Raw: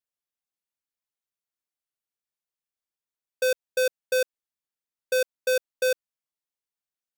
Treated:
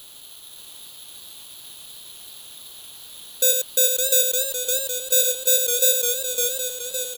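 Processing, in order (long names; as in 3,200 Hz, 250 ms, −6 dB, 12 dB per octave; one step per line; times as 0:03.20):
background noise white −46 dBFS
high shelf with overshoot 2,900 Hz +10.5 dB, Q 3
on a send: single-tap delay 89 ms −6 dB
on the sum: bad sample-rate conversion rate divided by 6×, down filtered, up zero stuff
feedback echo with a swinging delay time 560 ms, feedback 62%, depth 95 cents, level −4 dB
level −2.5 dB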